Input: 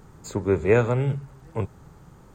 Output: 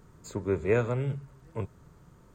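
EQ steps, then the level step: Butterworth band-stop 810 Hz, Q 7.7; -6.5 dB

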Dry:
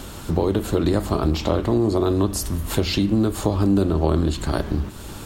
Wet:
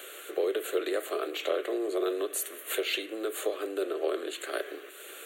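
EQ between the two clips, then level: steep high-pass 400 Hz 48 dB/octave; static phaser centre 2.2 kHz, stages 4; 0.0 dB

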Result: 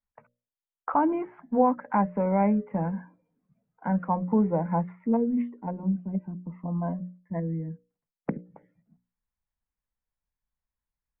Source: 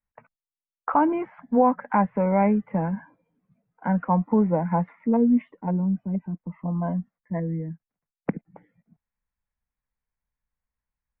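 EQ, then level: treble shelf 2.3 kHz -9 dB; hum notches 60/120/180/240/300/360/420/480/540/600 Hz; -2.0 dB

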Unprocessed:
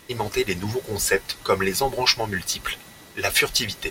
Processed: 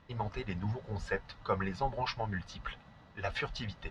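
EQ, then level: tape spacing loss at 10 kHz 42 dB; peaking EQ 360 Hz -15 dB 0.77 oct; peaking EQ 2.2 kHz -6 dB 0.48 oct; -3.5 dB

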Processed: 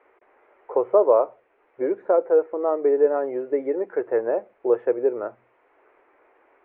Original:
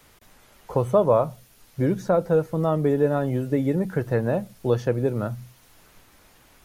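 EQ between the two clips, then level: elliptic band-pass 380–2300 Hz, stop band 40 dB; tilt EQ -3.5 dB/octave; 0.0 dB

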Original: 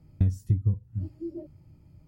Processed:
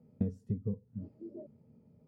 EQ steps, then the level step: two resonant band-passes 320 Hz, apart 0.94 oct; tilt EQ +2 dB/octave; +12.5 dB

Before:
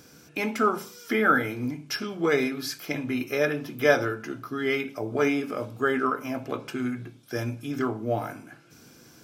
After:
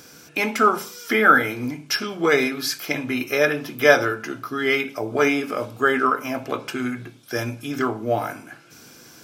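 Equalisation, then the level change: bass shelf 420 Hz -7.5 dB; +8.0 dB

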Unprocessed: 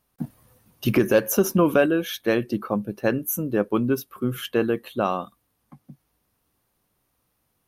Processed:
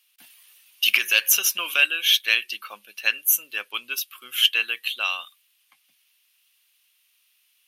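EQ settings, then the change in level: resonant high-pass 2.8 kHz, resonance Q 3.2; +8.0 dB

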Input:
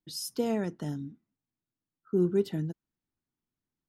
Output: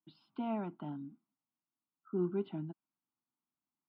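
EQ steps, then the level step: band-pass 310–2400 Hz; distance through air 370 m; static phaser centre 1.8 kHz, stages 6; +3.5 dB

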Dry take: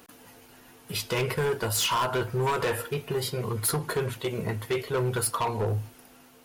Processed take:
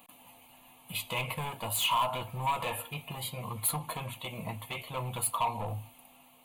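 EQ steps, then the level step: peaking EQ 63 Hz -12.5 dB 2.2 oct; static phaser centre 1.5 kHz, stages 6; band-stop 1.9 kHz, Q 6.2; 0.0 dB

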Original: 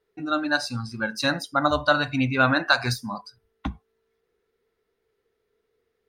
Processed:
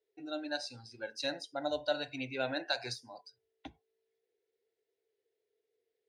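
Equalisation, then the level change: band-pass 190–6900 Hz; static phaser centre 490 Hz, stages 4; -8.5 dB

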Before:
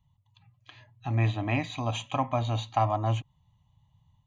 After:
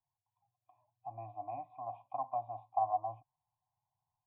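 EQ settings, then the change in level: cascade formant filter a; static phaser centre 300 Hz, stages 8; 0.0 dB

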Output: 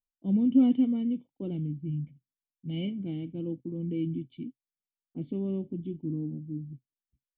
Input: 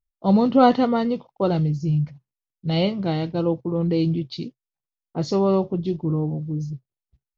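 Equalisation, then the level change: cascade formant filter i; -1.5 dB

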